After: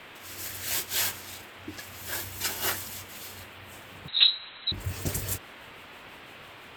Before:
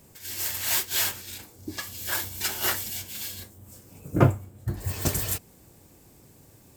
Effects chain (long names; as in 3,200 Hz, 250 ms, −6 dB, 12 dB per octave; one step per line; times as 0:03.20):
rotating-speaker cabinet horn 0.7 Hz, later 6 Hz, at 0:03.67
noise in a band 210–3,100 Hz −46 dBFS
0:04.08–0:04.72: voice inversion scrambler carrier 4,000 Hz
level −1.5 dB